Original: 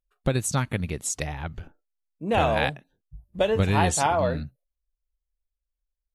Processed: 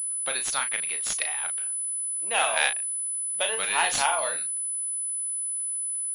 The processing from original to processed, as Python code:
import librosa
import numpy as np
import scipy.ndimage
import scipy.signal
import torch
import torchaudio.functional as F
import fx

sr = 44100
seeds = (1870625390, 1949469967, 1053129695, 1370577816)

y = scipy.signal.sosfilt(scipy.signal.butter(2, 1000.0, 'highpass', fs=sr, output='sos'), x)
y = fx.high_shelf(y, sr, hz=2400.0, db=9.5)
y = fx.dmg_crackle(y, sr, seeds[0], per_s=150.0, level_db=-46.0)
y = fx.doubler(y, sr, ms=36.0, db=-7.5)
y = fx.pwm(y, sr, carrier_hz=10000.0)